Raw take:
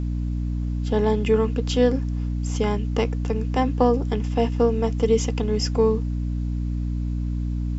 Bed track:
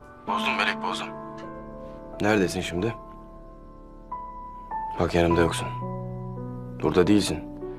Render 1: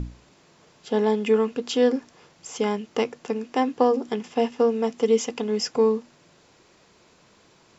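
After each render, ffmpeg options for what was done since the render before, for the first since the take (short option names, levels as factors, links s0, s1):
-af "bandreject=f=60:t=h:w=6,bandreject=f=120:t=h:w=6,bandreject=f=180:t=h:w=6,bandreject=f=240:t=h:w=6,bandreject=f=300:t=h:w=6"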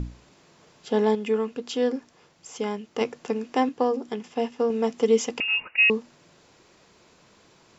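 -filter_complex "[0:a]asettb=1/sr,asplit=3[s0][s1][s2];[s0]atrim=end=5.404[s3];[s1]atrim=start=5.4:end=5.9,asetpts=PTS-STARTPTS,afade=t=in:d=0.004:c=qsin,afade=t=out:st=0.496:d=0.004:c=qsin,lowpass=f=2600:t=q:w=0.5098,lowpass=f=2600:t=q:w=0.6013,lowpass=f=2600:t=q:w=0.9,lowpass=f=2600:t=q:w=2.563,afreqshift=-3000[s4];[s2]atrim=start=5.896[s5];[s3][s4]acrossfade=d=0.004:c1=hsin:c2=qsin[s6];[s6][s5]acrossfade=d=0.004:c1=qsin:c2=hsin,asplit=5[s7][s8][s9][s10][s11];[s7]atrim=end=1.152[s12];[s8]atrim=start=1.148:end=3.012,asetpts=PTS-STARTPTS,volume=0.596[s13];[s9]atrim=start=3.008:end=3.692[s14];[s10]atrim=start=3.688:end=4.702,asetpts=PTS-STARTPTS,volume=0.631[s15];[s11]atrim=start=4.698[s16];[s12][s13]acrossfade=d=0.004:c1=hsin:c2=hsin[s17];[s17][s14]acrossfade=d=0.004:c1=hsin:c2=hsin[s18];[s18][s15]acrossfade=d=0.004:c1=hsin:c2=hsin[s19];[s19][s16]acrossfade=d=0.004:c1=hsin:c2=hsin"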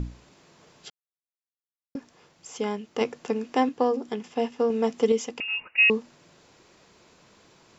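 -filter_complex "[0:a]asplit=5[s0][s1][s2][s3][s4];[s0]atrim=end=0.9,asetpts=PTS-STARTPTS,afade=t=out:st=0.896:d=0.004:c=hsin[s5];[s1]atrim=start=0.9:end=1.95,asetpts=PTS-STARTPTS,volume=0[s6];[s2]atrim=start=1.95:end=5.122,asetpts=PTS-STARTPTS,afade=t=in:d=0.004:c=hsin[s7];[s3]atrim=start=5.118:end=5.762,asetpts=PTS-STARTPTS,volume=0.562[s8];[s4]atrim=start=5.758[s9];[s5][s6][s7]concat=n=3:v=0:a=1[s10];[s10][s8]acrossfade=d=0.004:c1=hsin:c2=hsin[s11];[s11][s9]acrossfade=d=0.004:c1=hsin:c2=hsin"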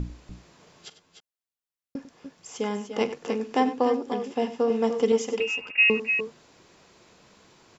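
-af "aecho=1:1:44|97|293|304:0.158|0.2|0.266|0.282"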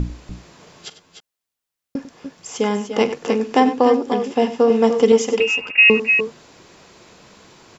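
-af "volume=2.82,alimiter=limit=0.708:level=0:latency=1"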